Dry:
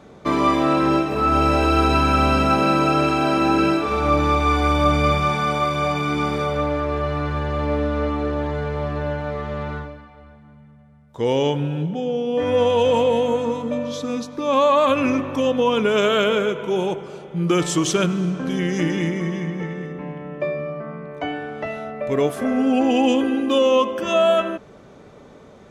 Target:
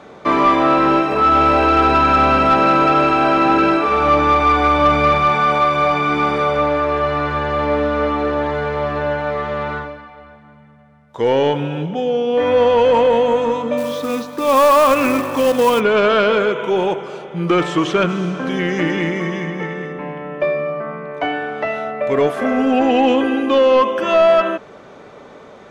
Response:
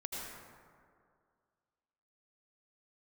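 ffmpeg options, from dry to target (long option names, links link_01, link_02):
-filter_complex "[0:a]acrossover=split=3000[link_01][link_02];[link_02]acompressor=threshold=-43dB:ratio=4:attack=1:release=60[link_03];[link_01][link_03]amix=inputs=2:normalize=0,asplit=2[link_04][link_05];[link_05]highpass=frequency=720:poles=1,volume=14dB,asoftclip=type=tanh:threshold=-5dB[link_06];[link_04][link_06]amix=inputs=2:normalize=0,lowpass=frequency=2700:poles=1,volume=-6dB,asplit=3[link_07][link_08][link_09];[link_07]afade=type=out:start_time=13.77:duration=0.02[link_10];[link_08]acrusher=bits=4:mode=log:mix=0:aa=0.000001,afade=type=in:start_time=13.77:duration=0.02,afade=type=out:start_time=15.79:duration=0.02[link_11];[link_09]afade=type=in:start_time=15.79:duration=0.02[link_12];[link_10][link_11][link_12]amix=inputs=3:normalize=0,volume=1.5dB"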